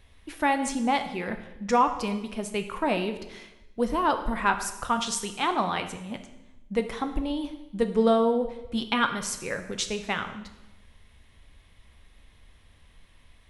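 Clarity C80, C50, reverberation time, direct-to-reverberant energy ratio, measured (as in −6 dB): 12.5 dB, 10.0 dB, 1.0 s, 7.0 dB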